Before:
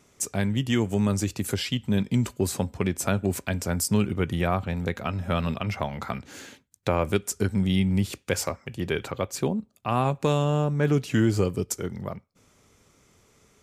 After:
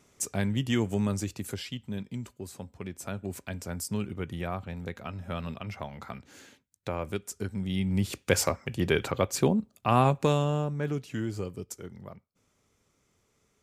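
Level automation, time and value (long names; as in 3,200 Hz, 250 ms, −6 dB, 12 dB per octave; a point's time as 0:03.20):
0:00.86 −3 dB
0:02.45 −15.5 dB
0:03.49 −9 dB
0:07.63 −9 dB
0:08.31 +2 dB
0:10.02 +2 dB
0:11.09 −11 dB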